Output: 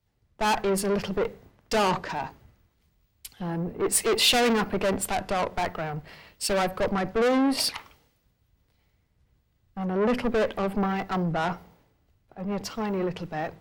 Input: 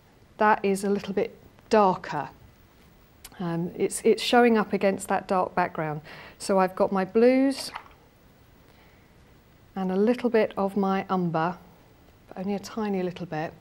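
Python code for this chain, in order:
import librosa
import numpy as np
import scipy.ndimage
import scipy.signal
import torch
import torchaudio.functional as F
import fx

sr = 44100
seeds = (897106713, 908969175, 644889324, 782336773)

y = fx.dynamic_eq(x, sr, hz=7700.0, q=0.76, threshold_db=-46.0, ratio=4.0, max_db=-4)
y = fx.tube_stage(y, sr, drive_db=29.0, bias=0.4)
y = fx.band_widen(y, sr, depth_pct=100)
y = y * librosa.db_to_amplitude(7.0)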